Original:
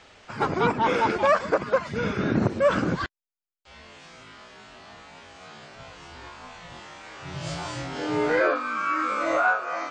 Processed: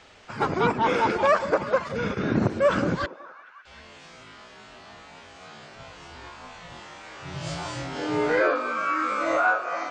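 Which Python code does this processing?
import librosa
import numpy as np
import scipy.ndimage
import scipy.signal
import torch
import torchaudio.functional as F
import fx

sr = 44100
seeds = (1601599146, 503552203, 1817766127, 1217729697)

y = fx.echo_stepped(x, sr, ms=187, hz=460.0, octaves=0.7, feedback_pct=70, wet_db=-11.5)
y = fx.transient(y, sr, attack_db=-5, sustain_db=-9, at=(1.82, 2.31))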